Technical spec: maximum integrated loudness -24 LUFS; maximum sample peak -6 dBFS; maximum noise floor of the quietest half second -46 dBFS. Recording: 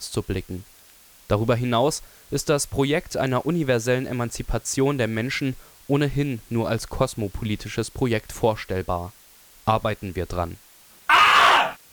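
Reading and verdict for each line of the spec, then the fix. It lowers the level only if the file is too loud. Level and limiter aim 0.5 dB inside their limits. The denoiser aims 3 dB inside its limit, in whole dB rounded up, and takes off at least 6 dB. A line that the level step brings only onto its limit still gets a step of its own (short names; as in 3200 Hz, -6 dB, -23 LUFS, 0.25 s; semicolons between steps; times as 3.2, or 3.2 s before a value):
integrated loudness -23.0 LUFS: fail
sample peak -4.5 dBFS: fail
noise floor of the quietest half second -51 dBFS: OK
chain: gain -1.5 dB; limiter -6.5 dBFS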